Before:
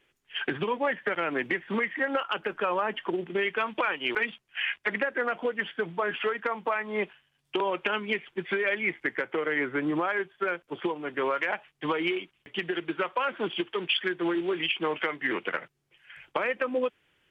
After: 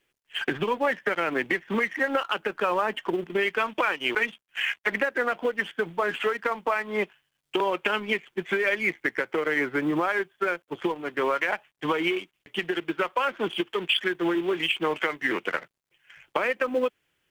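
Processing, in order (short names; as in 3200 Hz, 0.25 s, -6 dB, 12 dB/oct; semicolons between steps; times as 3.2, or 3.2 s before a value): G.711 law mismatch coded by A; gain +3.5 dB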